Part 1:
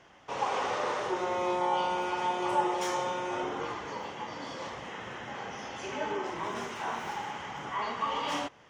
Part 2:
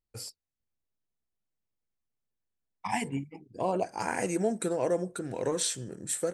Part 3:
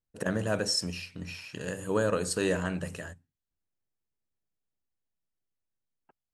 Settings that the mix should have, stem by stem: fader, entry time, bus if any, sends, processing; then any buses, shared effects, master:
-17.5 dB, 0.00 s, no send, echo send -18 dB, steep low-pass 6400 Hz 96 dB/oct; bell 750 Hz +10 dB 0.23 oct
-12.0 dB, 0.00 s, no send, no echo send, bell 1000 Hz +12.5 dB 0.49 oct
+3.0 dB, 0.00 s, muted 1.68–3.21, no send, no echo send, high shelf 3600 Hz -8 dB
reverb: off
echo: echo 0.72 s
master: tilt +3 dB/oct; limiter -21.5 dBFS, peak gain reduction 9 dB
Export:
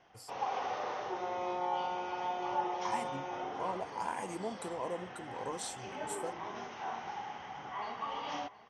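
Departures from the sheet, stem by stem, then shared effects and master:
stem 1 -17.5 dB -> -8.5 dB; stem 3: muted; master: missing tilt +3 dB/oct

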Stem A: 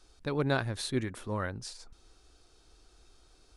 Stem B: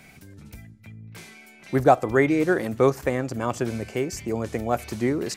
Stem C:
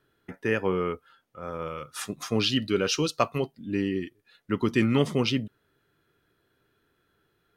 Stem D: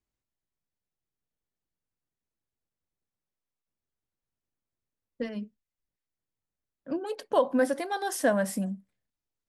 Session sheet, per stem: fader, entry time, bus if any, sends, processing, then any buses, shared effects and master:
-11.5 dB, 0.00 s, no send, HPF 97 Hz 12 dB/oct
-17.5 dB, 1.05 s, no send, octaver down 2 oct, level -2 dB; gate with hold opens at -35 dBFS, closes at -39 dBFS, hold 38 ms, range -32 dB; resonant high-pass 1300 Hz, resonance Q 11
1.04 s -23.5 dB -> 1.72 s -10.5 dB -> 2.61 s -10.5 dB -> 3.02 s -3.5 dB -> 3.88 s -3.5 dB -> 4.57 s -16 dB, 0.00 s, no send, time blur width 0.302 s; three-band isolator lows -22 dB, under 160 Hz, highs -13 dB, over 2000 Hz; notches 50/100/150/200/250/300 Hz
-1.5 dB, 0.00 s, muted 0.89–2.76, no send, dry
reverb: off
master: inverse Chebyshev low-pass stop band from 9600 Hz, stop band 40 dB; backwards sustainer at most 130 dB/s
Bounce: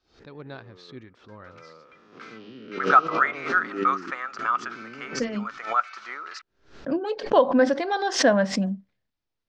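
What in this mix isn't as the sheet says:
stem B -17.5 dB -> -5.5 dB; stem D -1.5 dB -> +5.5 dB

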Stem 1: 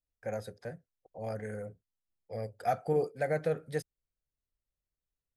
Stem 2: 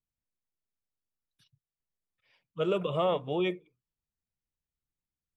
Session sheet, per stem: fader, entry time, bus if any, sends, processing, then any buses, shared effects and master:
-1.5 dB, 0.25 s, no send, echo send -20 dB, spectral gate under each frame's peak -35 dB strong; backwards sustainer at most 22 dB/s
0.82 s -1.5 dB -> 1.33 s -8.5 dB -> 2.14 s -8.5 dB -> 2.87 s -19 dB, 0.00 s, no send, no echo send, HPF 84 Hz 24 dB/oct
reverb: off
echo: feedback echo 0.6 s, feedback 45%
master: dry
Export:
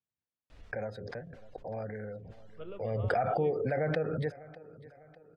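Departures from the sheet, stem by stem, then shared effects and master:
stem 1: entry 0.25 s -> 0.50 s; master: extra LPF 2900 Hz 12 dB/oct

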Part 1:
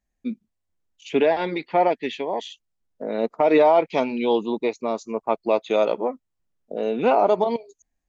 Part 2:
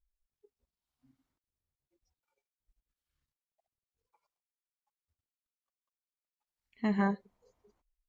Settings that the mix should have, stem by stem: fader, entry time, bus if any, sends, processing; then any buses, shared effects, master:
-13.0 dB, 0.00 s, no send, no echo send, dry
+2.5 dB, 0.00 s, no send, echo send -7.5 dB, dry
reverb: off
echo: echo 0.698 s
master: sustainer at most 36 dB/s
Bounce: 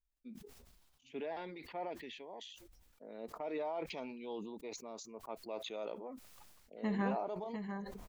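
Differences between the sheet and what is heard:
stem 1 -13.0 dB -> -23.5 dB; stem 2 +2.5 dB -> -6.5 dB

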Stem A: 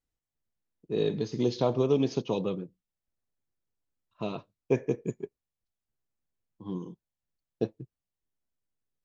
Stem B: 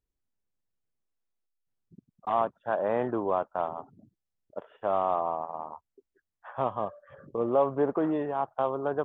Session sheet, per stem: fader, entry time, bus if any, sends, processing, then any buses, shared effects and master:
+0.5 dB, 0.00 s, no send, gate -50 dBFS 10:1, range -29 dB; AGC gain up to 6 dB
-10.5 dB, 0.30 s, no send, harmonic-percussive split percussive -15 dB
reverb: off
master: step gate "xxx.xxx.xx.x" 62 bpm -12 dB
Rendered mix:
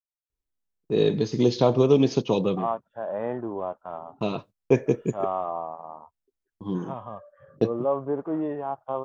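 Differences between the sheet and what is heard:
stem B -10.5 dB -> +0.5 dB; master: missing step gate "xxx.xxx.xx.x" 62 bpm -12 dB

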